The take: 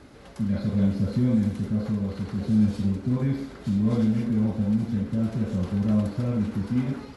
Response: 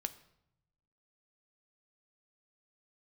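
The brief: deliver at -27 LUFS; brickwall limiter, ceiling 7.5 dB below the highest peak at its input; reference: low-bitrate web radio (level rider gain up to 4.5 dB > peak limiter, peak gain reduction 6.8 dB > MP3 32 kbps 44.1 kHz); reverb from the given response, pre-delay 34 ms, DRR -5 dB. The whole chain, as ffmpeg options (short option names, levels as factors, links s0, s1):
-filter_complex "[0:a]alimiter=limit=0.1:level=0:latency=1,asplit=2[s0][s1];[1:a]atrim=start_sample=2205,adelay=34[s2];[s1][s2]afir=irnorm=-1:irlink=0,volume=2[s3];[s0][s3]amix=inputs=2:normalize=0,dynaudnorm=m=1.68,alimiter=limit=0.133:level=0:latency=1,volume=0.841" -ar 44100 -c:a libmp3lame -b:a 32k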